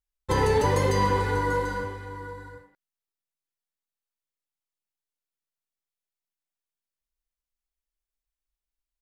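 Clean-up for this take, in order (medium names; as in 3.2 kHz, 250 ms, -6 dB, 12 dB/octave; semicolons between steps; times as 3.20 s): inverse comb 741 ms -13 dB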